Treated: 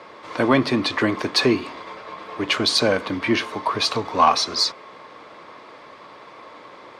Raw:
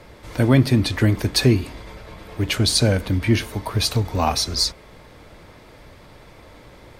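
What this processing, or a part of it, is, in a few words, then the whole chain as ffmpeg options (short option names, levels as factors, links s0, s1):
intercom: -af "highpass=320,lowpass=4700,equalizer=f=1100:t=o:w=0.31:g=11,asoftclip=type=tanh:threshold=0.422,volume=1.5"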